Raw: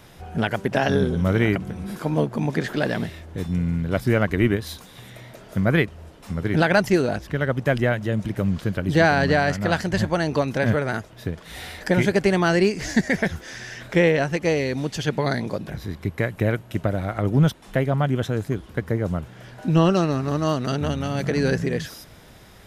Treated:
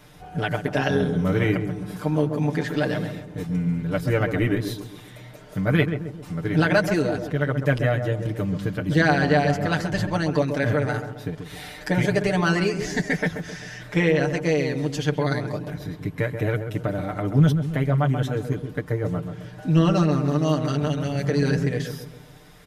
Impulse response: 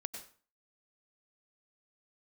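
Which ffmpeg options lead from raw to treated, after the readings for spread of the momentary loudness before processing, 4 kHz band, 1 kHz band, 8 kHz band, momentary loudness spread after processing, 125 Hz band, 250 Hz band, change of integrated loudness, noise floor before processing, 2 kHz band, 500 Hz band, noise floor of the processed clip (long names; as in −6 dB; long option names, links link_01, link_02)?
14 LU, −1.5 dB, −2.0 dB, −2.0 dB, 13 LU, +0.5 dB, −0.5 dB, −1.0 dB, −46 dBFS, −1.5 dB, −1.5 dB, −43 dBFS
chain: -filter_complex "[0:a]aecho=1:1:6.7:0.88,asplit=2[link_01][link_02];[link_02]adelay=133,lowpass=frequency=1000:poles=1,volume=-6.5dB,asplit=2[link_03][link_04];[link_04]adelay=133,lowpass=frequency=1000:poles=1,volume=0.5,asplit=2[link_05][link_06];[link_06]adelay=133,lowpass=frequency=1000:poles=1,volume=0.5,asplit=2[link_07][link_08];[link_08]adelay=133,lowpass=frequency=1000:poles=1,volume=0.5,asplit=2[link_09][link_10];[link_10]adelay=133,lowpass=frequency=1000:poles=1,volume=0.5,asplit=2[link_11][link_12];[link_12]adelay=133,lowpass=frequency=1000:poles=1,volume=0.5[link_13];[link_01][link_03][link_05][link_07][link_09][link_11][link_13]amix=inputs=7:normalize=0,volume=-4.5dB"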